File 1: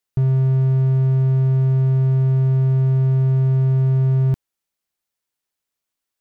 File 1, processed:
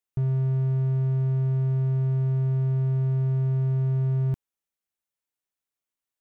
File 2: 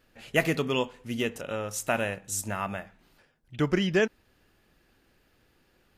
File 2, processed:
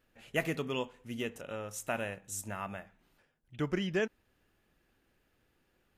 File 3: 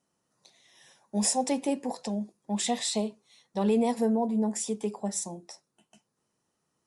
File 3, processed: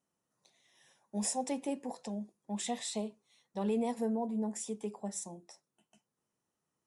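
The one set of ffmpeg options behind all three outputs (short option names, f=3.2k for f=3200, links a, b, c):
-af "equalizer=f=4.6k:w=2.8:g=-4.5,volume=-7.5dB"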